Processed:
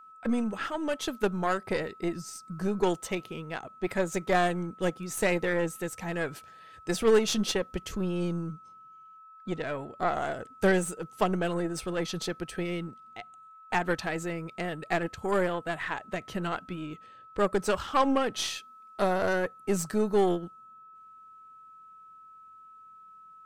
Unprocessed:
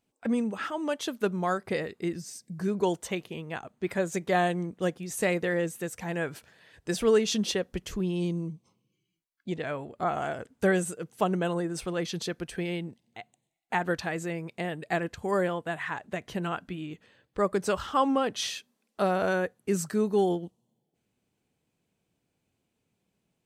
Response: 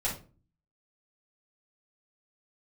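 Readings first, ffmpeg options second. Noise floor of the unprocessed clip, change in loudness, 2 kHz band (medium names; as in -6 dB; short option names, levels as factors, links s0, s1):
-80 dBFS, 0.0 dB, +0.5 dB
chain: -af "aeval=exprs='val(0)+0.00355*sin(2*PI*1300*n/s)':c=same,aeval=exprs='0.251*(cos(1*acos(clip(val(0)/0.251,-1,1)))-cos(1*PI/2))+0.0224*(cos(6*acos(clip(val(0)/0.251,-1,1)))-cos(6*PI/2))':c=same"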